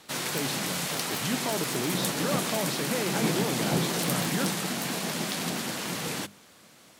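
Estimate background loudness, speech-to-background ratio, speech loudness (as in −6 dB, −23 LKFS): −29.0 LKFS, −5.0 dB, −34.0 LKFS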